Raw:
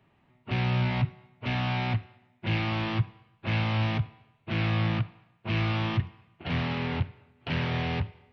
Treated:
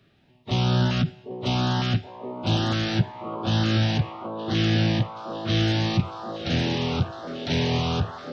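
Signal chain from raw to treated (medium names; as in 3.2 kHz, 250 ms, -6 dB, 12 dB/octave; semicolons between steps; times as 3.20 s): repeats whose band climbs or falls 776 ms, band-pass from 340 Hz, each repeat 0.7 oct, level -1 dB; formant shift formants +5 st; LFO notch saw up 1.1 Hz 850–2500 Hz; trim +5 dB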